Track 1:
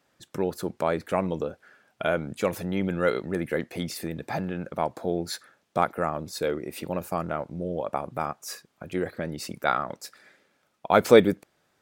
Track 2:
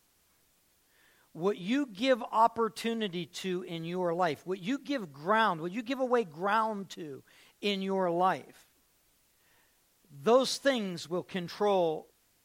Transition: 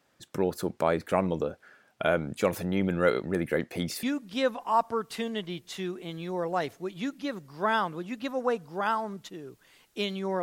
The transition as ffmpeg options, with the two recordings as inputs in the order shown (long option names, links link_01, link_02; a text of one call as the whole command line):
ffmpeg -i cue0.wav -i cue1.wav -filter_complex "[0:a]apad=whole_dur=10.42,atrim=end=10.42,atrim=end=4.032[link_01];[1:a]atrim=start=1.688:end=8.08[link_02];[link_01][link_02]acrossfade=duration=0.004:curve1=hsin:curve2=hsin" out.wav